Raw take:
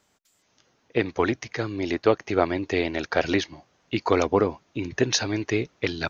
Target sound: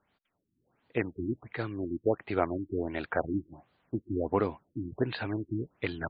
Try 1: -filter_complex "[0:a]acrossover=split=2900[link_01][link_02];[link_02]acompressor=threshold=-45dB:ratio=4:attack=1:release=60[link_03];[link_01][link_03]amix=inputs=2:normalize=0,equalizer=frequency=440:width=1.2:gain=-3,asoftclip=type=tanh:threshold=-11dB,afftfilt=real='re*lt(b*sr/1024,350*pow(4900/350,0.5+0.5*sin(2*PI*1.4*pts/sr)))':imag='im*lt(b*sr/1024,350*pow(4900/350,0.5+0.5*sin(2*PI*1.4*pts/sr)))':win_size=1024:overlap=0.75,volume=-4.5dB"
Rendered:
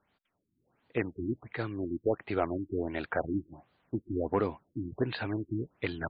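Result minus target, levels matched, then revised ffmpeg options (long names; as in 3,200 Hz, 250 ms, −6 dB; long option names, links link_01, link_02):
soft clipping: distortion +18 dB
-filter_complex "[0:a]acrossover=split=2900[link_01][link_02];[link_02]acompressor=threshold=-45dB:ratio=4:attack=1:release=60[link_03];[link_01][link_03]amix=inputs=2:normalize=0,equalizer=frequency=440:width=1.2:gain=-3,asoftclip=type=tanh:threshold=0dB,afftfilt=real='re*lt(b*sr/1024,350*pow(4900/350,0.5+0.5*sin(2*PI*1.4*pts/sr)))':imag='im*lt(b*sr/1024,350*pow(4900/350,0.5+0.5*sin(2*PI*1.4*pts/sr)))':win_size=1024:overlap=0.75,volume=-4.5dB"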